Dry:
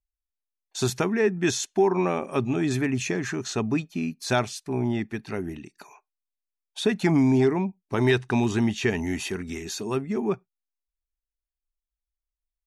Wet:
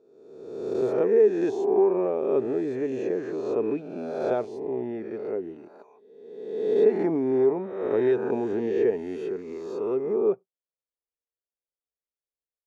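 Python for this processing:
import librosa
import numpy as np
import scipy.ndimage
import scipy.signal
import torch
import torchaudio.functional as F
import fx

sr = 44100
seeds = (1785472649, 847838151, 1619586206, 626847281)

y = fx.spec_swells(x, sr, rise_s=1.28)
y = fx.bandpass_q(y, sr, hz=470.0, q=3.7)
y = y * librosa.db_to_amplitude(5.0)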